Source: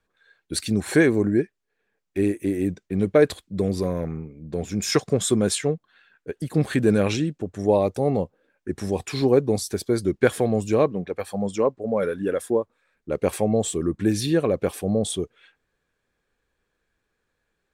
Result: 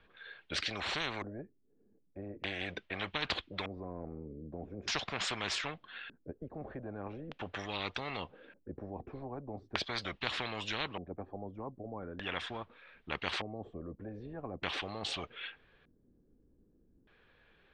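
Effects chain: LFO low-pass square 0.41 Hz 280–3200 Hz; air absorption 140 m; spectral compressor 10:1; gain -8.5 dB

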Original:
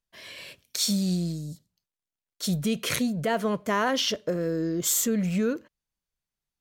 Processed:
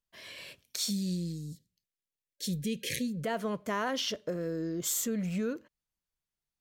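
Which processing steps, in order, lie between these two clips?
spectral gain 0.9–3.23, 560–1600 Hz -27 dB; in parallel at -2.5 dB: compressor, threshold -35 dBFS, peak gain reduction 13.5 dB; on the sum: gain -8.5 dB

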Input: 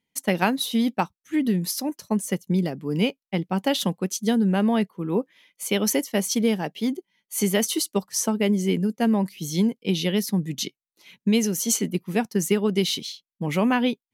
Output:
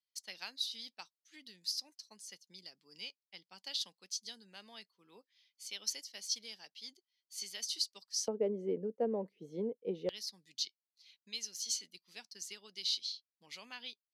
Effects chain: band-pass 4700 Hz, Q 4.7, from 8.28 s 490 Hz, from 10.09 s 4600 Hz; gain -1.5 dB

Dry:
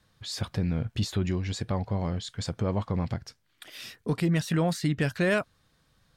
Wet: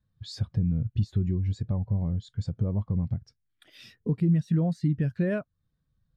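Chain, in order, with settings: low shelf 310 Hz +7 dB; compressor 2:1, threshold -34 dBFS, peak gain reduction 9.5 dB; spectral expander 1.5:1; gain +5 dB

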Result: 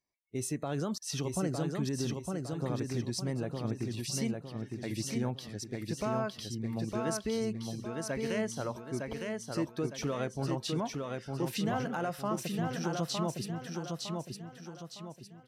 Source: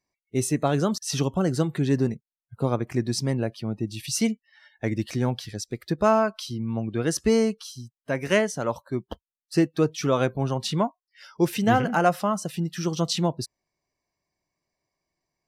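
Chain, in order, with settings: limiter -17 dBFS, peak gain reduction 9.5 dB; on a send: feedback echo 0.909 s, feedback 41%, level -3.5 dB; on the sum: gain -8 dB

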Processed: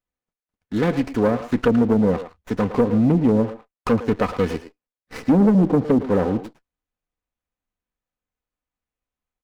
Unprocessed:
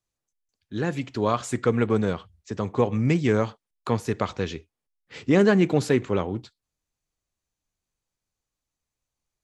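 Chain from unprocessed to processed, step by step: comb 4 ms, depth 46%; treble ducked by the level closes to 380 Hz, closed at -16 dBFS; sample leveller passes 2; speakerphone echo 0.11 s, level -10 dB; running maximum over 9 samples

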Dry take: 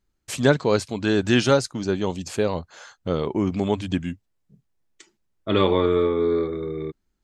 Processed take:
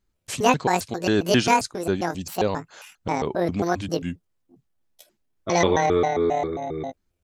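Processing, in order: trilling pitch shifter +9.5 st, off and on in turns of 0.134 s

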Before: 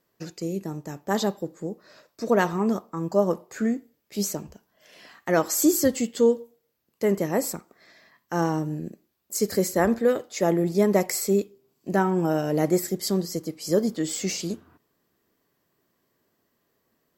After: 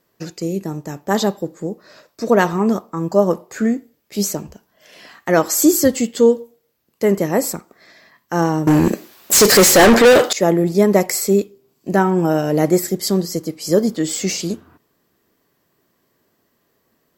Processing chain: 8.67–10.33 overdrive pedal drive 33 dB, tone 7600 Hz, clips at -9.5 dBFS; gain +7 dB

